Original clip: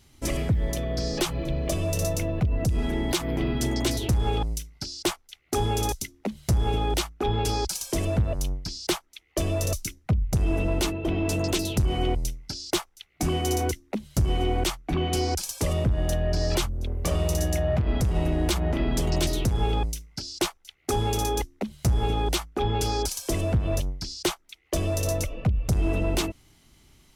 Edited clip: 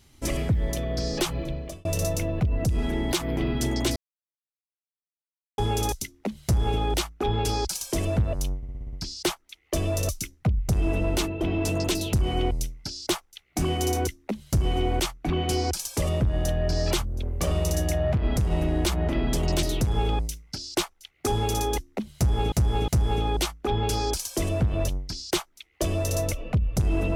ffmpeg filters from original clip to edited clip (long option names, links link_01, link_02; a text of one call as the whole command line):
ffmpeg -i in.wav -filter_complex "[0:a]asplit=12[link_01][link_02][link_03][link_04][link_05][link_06][link_07][link_08][link_09][link_10][link_11][link_12];[link_01]atrim=end=1.85,asetpts=PTS-STARTPTS,afade=type=out:start_time=1.36:duration=0.49[link_13];[link_02]atrim=start=1.85:end=3.96,asetpts=PTS-STARTPTS,afade=type=in:duration=0.004:curve=hsin,afade=type=out:start_time=2.106:duration=0.004:curve=hsin[link_14];[link_03]atrim=start=3.96:end=5.58,asetpts=PTS-STARTPTS,volume=0[link_15];[link_04]atrim=start=5.58:end=8.632,asetpts=PTS-STARTPTS,afade=type=in:duration=0.004:curve=hsin[link_16];[link_05]atrim=start=8.568:end=8.632[link_17];[link_06]atrim=start=8.568:end=8.632[link_18];[link_07]atrim=start=8.568:end=8.632[link_19];[link_08]atrim=start=8.568:end=8.632[link_20];[link_09]atrim=start=8.568:end=8.632[link_21];[link_10]atrim=start=8.568:end=22.162[link_22];[link_11]atrim=start=21.798:end=22.162[link_23];[link_12]atrim=start=21.798[link_24];[link_13][link_14][link_15][link_16]concat=n=4:v=0:a=1[link_25];[link_25][link_17]acrossfade=duration=0.004:curve1=hsin:curve2=hsin[link_26];[link_26][link_18]acrossfade=duration=0.004:curve1=hsin:curve2=hsin[link_27];[link_27][link_19]acrossfade=duration=0.004:curve1=hsin:curve2=hsin[link_28];[link_28][link_20]acrossfade=duration=0.004:curve1=hsin:curve2=hsin[link_29];[link_29][link_21]acrossfade=duration=0.004:curve1=hsin:curve2=hsin[link_30];[link_30][link_22]acrossfade=duration=0.004:curve1=hsin:curve2=hsin[link_31];[link_31][link_23]acrossfade=duration=0.004:curve1=hsin:curve2=hsin[link_32];[link_32][link_24]acrossfade=duration=0.004:curve1=hsin:curve2=hsin" out.wav